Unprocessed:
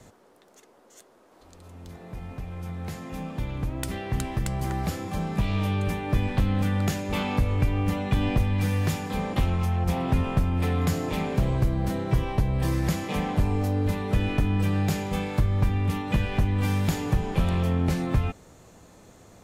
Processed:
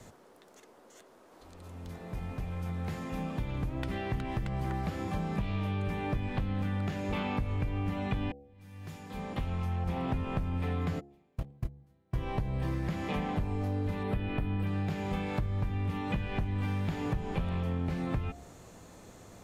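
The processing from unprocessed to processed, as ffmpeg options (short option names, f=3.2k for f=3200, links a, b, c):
-filter_complex "[0:a]asplit=3[a][b][c];[a]afade=t=out:st=10.99:d=0.02[d];[b]agate=range=-42dB:threshold=-19dB:ratio=16:release=100:detection=peak,afade=t=in:st=10.99:d=0.02,afade=t=out:st=12.14:d=0.02[e];[c]afade=t=in:st=12.14:d=0.02[f];[d][e][f]amix=inputs=3:normalize=0,asettb=1/sr,asplit=3[g][h][i];[g]atrim=end=14.034[j];[h]atrim=start=14.03:end=14.67,asetpts=PTS-STARTPTS,afade=t=in:d=0.004:c=qsin,afade=t=out:st=0.636:d=0.004:c=qsin,equalizer=f=6.4k:w=2:g=-15[k];[i]atrim=start=14.666[l];[j][k]acrossfade=d=0.004:c1=hsin:c2=qsin[m];[m][l]acrossfade=d=0.004:c1=qsin:c2=hsin,asplit=2[n][o];[n]atrim=end=8.32,asetpts=PTS-STARTPTS,afade=t=out:st=8.316:d=0.004:c=hsin[p];[o]atrim=start=8.32,asetpts=PTS-STARTPTS,afade=t=in:d=1.59:c=qua[q];[p][q]concat=n=2:v=0:a=1,acrossover=split=3700[r][s];[s]acompressor=threshold=-55dB:ratio=4:attack=1:release=60[t];[r][t]amix=inputs=2:normalize=0,bandreject=f=70.17:t=h:w=4,bandreject=f=140.34:t=h:w=4,bandreject=f=210.51:t=h:w=4,bandreject=f=280.68:t=h:w=4,bandreject=f=350.85:t=h:w=4,bandreject=f=421.02:t=h:w=4,bandreject=f=491.19:t=h:w=4,bandreject=f=561.36:t=h:w=4,bandreject=f=631.53:t=h:w=4,bandreject=f=701.7:t=h:w=4,bandreject=f=771.87:t=h:w=4,bandreject=f=842.04:t=h:w=4,acompressor=threshold=-30dB:ratio=4"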